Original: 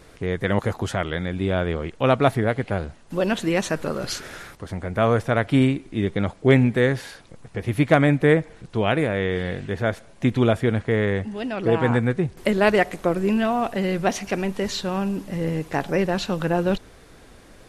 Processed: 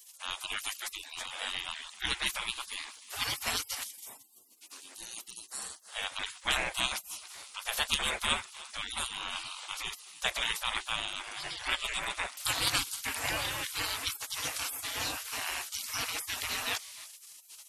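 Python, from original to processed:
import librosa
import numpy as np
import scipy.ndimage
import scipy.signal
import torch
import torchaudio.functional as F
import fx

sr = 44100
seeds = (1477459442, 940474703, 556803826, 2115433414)

y = fx.tone_stack(x, sr, knobs='10-0-10', at=(3.84, 5.89))
y = fx.echo_feedback(y, sr, ms=306, feedback_pct=22, wet_db=-19)
y = fx.spec_gate(y, sr, threshold_db=-30, keep='weak')
y = fx.high_shelf(y, sr, hz=6300.0, db=6.0)
y = y * librosa.db_to_amplitude(9.0)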